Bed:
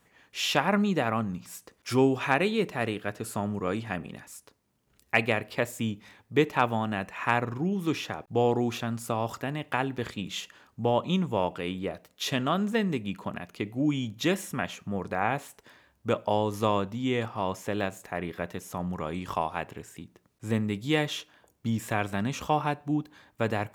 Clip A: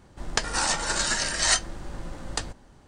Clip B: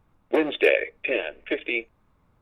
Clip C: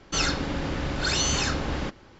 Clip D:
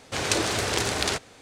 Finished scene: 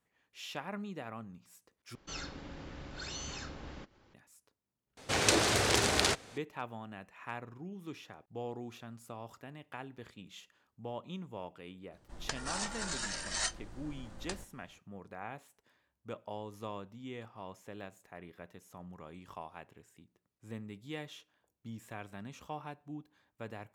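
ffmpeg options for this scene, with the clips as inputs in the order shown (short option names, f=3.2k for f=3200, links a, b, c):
-filter_complex "[0:a]volume=-16.5dB[a];[3:a]acompressor=mode=upward:threshold=-39dB:ratio=2.5:attack=3.2:release=140:knee=2.83:detection=peak[b];[a]asplit=2[c][d];[c]atrim=end=1.954[e];[b]atrim=end=2.19,asetpts=PTS-STARTPTS,volume=-17.5dB[f];[d]atrim=start=4.136[g];[4:a]atrim=end=1.41,asetpts=PTS-STARTPTS,volume=-2.5dB,afade=t=in:d=0.004:c=hsin,afade=t=out:st=1.406:d=0.004:c=hsin,adelay=219177S[h];[1:a]atrim=end=2.87,asetpts=PTS-STARTPTS,volume=-12.5dB,afade=t=in:d=0.004:c=hsin,afade=t=out:st=2.866:d=0.004:c=hsin,adelay=11920[i];[e][f]acrossfade=d=0.004:c1=hsin:c2=hsin[j];[j][g]acrossfade=d=0.004:c1=hsin:c2=hsin[k];[k][h][i]amix=inputs=3:normalize=0"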